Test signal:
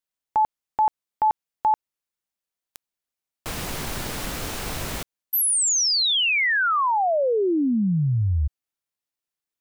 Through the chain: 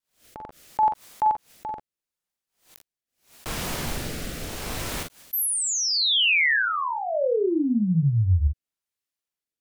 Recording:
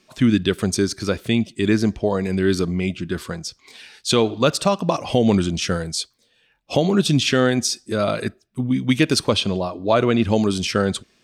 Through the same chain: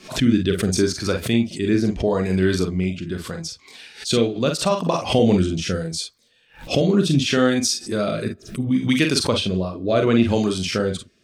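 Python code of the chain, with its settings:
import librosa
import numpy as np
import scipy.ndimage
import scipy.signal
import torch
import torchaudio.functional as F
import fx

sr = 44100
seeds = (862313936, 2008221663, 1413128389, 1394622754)

p1 = fx.rotary(x, sr, hz=0.75)
p2 = p1 + fx.room_early_taps(p1, sr, ms=(43, 55), db=(-5.5, -12.0), dry=0)
y = fx.pre_swell(p2, sr, db_per_s=150.0)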